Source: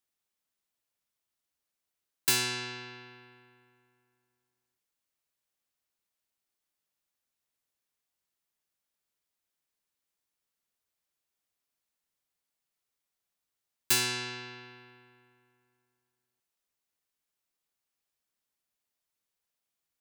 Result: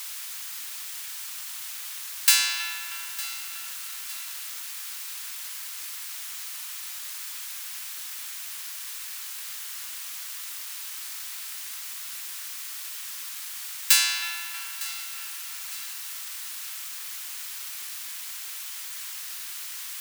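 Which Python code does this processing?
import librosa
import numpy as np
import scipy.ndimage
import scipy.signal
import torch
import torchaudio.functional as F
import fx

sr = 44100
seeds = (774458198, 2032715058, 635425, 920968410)

p1 = fx.law_mismatch(x, sr, coded='A')
p2 = fx.echo_feedback(p1, sr, ms=907, feedback_pct=42, wet_db=-17.0)
p3 = fx.quant_dither(p2, sr, seeds[0], bits=6, dither='triangular')
p4 = p2 + (p3 * librosa.db_to_amplitude(-6.0))
p5 = scipy.signal.sosfilt(scipy.signal.bessel(6, 1500.0, 'highpass', norm='mag', fs=sr, output='sos'), p4)
p6 = p5 + fx.echo_wet_lowpass(p5, sr, ms=318, feedback_pct=67, hz=2300.0, wet_db=-9.5, dry=0)
y = p6 * librosa.db_to_amplitude(5.5)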